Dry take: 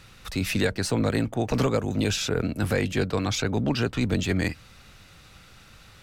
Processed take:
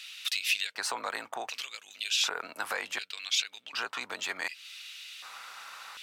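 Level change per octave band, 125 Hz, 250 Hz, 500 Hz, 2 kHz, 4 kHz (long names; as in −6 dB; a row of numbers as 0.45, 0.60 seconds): below −40 dB, −29.0 dB, −17.5 dB, −1.5 dB, +2.0 dB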